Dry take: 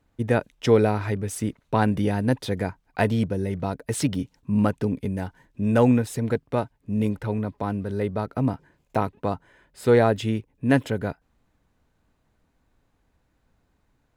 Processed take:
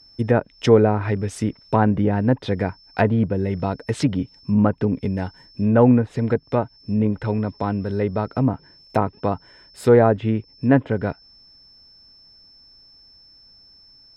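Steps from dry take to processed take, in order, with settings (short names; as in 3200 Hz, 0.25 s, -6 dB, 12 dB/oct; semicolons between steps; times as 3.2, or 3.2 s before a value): whine 5300 Hz -52 dBFS; treble ducked by the level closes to 1500 Hz, closed at -18.5 dBFS; gain +4 dB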